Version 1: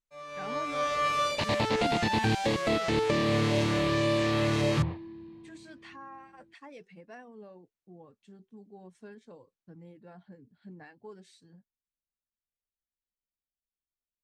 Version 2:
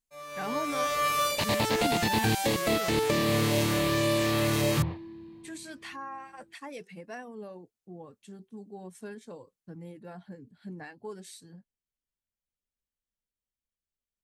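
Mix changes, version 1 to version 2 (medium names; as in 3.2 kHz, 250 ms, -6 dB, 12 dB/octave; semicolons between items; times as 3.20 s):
speech +6.0 dB; master: remove distance through air 91 m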